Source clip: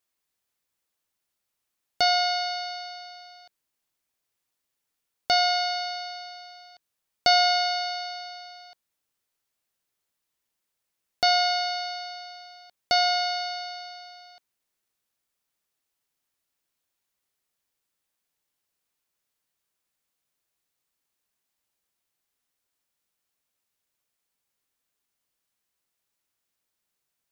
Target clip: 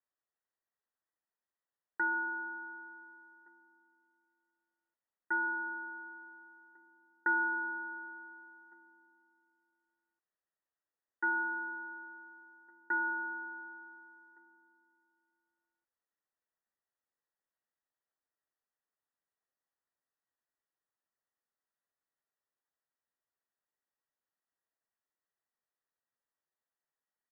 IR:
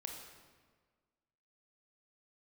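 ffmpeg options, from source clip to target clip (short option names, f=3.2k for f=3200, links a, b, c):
-filter_complex "[0:a]equalizer=f=130:t=o:w=0.8:g=6.5,lowpass=f=2.2k:t=q:w=0.5098,lowpass=f=2.2k:t=q:w=0.6013,lowpass=f=2.2k:t=q:w=0.9,lowpass=f=2.2k:t=q:w=2.563,afreqshift=-2600,asplit=2[a][b];[b]adelay=1458,volume=-25dB,highshelf=f=4k:g=-32.8[c];[a][c]amix=inputs=2:normalize=0,asplit=2[d][e];[1:a]atrim=start_sample=2205,adelay=65[f];[e][f]afir=irnorm=-1:irlink=0,volume=-18dB[g];[d][g]amix=inputs=2:normalize=0,asetrate=34006,aresample=44100,atempo=1.29684,volume=-8.5dB"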